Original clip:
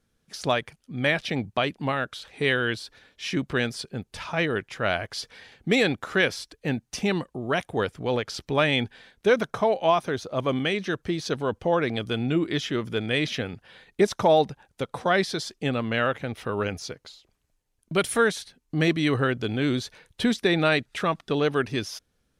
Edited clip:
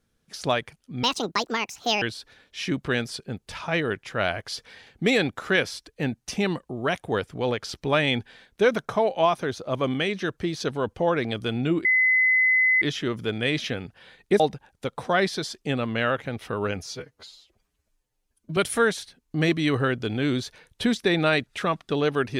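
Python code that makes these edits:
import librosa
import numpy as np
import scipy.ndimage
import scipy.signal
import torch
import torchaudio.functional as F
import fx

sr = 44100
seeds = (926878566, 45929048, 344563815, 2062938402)

y = fx.edit(x, sr, fx.speed_span(start_s=1.03, length_s=1.64, speed=1.66),
    fx.insert_tone(at_s=12.5, length_s=0.97, hz=2030.0, db=-16.5),
    fx.cut(start_s=14.08, length_s=0.28),
    fx.stretch_span(start_s=16.82, length_s=1.14, factor=1.5), tone=tone)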